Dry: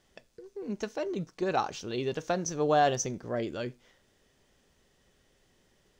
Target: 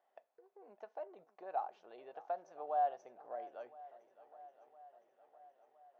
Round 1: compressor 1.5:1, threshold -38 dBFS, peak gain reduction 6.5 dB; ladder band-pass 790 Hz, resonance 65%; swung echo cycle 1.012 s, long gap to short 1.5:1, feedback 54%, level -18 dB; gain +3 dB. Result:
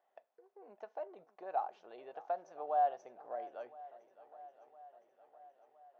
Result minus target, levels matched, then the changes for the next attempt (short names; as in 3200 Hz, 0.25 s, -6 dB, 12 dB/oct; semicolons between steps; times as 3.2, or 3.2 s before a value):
compressor: peak gain reduction -2.5 dB
change: compressor 1.5:1, threshold -45.5 dBFS, peak gain reduction 9 dB